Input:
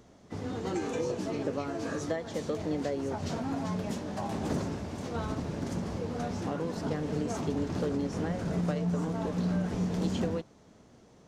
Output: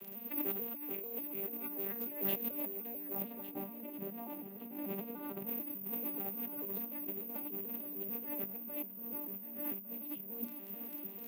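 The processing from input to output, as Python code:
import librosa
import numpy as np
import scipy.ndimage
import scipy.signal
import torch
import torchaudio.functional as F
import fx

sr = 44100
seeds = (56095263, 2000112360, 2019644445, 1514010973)

y = fx.vocoder_arp(x, sr, chord='minor triad', root=55, every_ms=147)
y = fx.curve_eq(y, sr, hz=(1600.0, 2600.0, 5500.0), db=(0, 14, -6))
y = fx.dmg_crackle(y, sr, seeds[0], per_s=50.0, level_db=-55.0)
y = (np.kron(y[::3], np.eye(3)[0]) * 3)[:len(y)]
y = scipy.signal.sosfilt(scipy.signal.butter(2, 200.0, 'highpass', fs=sr, output='sos'), y)
y = fx.hum_notches(y, sr, base_hz=60, count=5)
y = fx.over_compress(y, sr, threshold_db=-40.0, ratio=-1.0)
y = fx.high_shelf(y, sr, hz=2200.0, db=-10.0, at=(3.22, 5.47))
y = fx.echo_feedback(y, sr, ms=1155, feedback_pct=37, wet_db=-14.0)
y = y * 10.0 ** (-1.5 / 20.0)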